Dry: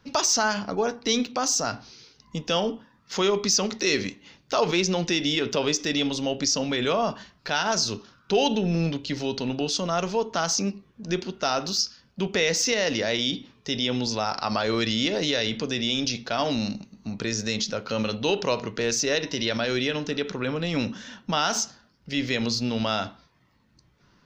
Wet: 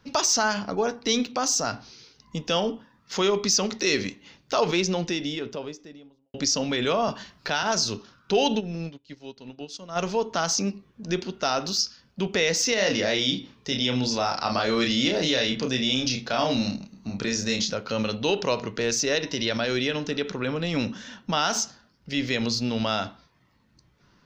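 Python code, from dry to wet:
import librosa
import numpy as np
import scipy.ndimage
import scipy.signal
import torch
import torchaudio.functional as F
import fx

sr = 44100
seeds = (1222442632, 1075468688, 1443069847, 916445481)

y = fx.studio_fade_out(x, sr, start_s=4.59, length_s=1.75)
y = fx.band_squash(y, sr, depth_pct=40, at=(7.08, 7.63))
y = fx.upward_expand(y, sr, threshold_db=-38.0, expansion=2.5, at=(8.59, 9.95), fade=0.02)
y = fx.doubler(y, sr, ms=31.0, db=-4, at=(12.74, 17.74))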